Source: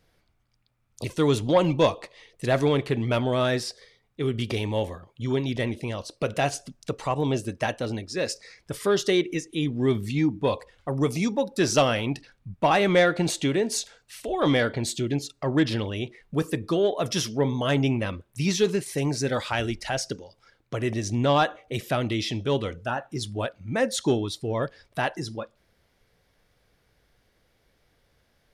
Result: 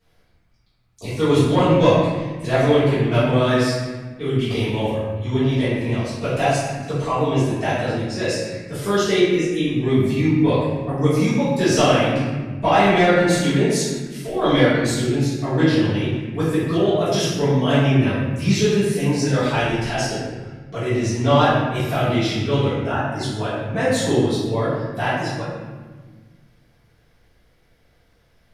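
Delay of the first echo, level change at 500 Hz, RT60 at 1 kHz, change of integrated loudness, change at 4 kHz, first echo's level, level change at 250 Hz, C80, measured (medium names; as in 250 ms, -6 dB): no echo, +6.0 dB, 1.3 s, +6.5 dB, +4.5 dB, no echo, +7.5 dB, 1.5 dB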